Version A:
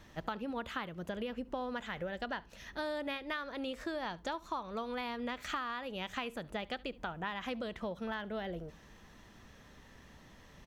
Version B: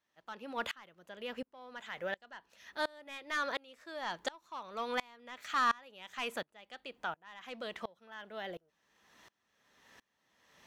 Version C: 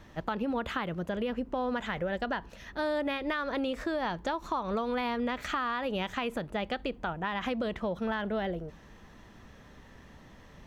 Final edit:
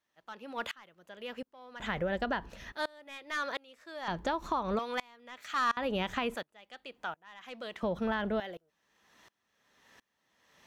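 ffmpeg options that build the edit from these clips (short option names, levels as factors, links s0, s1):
-filter_complex "[2:a]asplit=4[s0][s1][s2][s3];[1:a]asplit=5[s4][s5][s6][s7][s8];[s4]atrim=end=1.802[s9];[s0]atrim=start=1.798:end=2.722[s10];[s5]atrim=start=2.718:end=4.082[s11];[s1]atrim=start=4.078:end=4.792[s12];[s6]atrim=start=4.788:end=5.772[s13];[s2]atrim=start=5.768:end=6.352[s14];[s7]atrim=start=6.348:end=7.832[s15];[s3]atrim=start=7.828:end=8.402[s16];[s8]atrim=start=8.398[s17];[s9][s10]acrossfade=d=0.004:c1=hsin:c2=hsin[s18];[s18][s11]acrossfade=d=0.004:c1=hsin:c2=hsin[s19];[s19][s12]acrossfade=d=0.004:c1=hsin:c2=hsin[s20];[s20][s13]acrossfade=d=0.004:c1=hsin:c2=hsin[s21];[s21][s14]acrossfade=d=0.004:c1=hsin:c2=hsin[s22];[s22][s15]acrossfade=d=0.004:c1=hsin:c2=hsin[s23];[s23][s16]acrossfade=d=0.004:c1=hsin:c2=hsin[s24];[s24][s17]acrossfade=d=0.004:c1=hsin:c2=hsin"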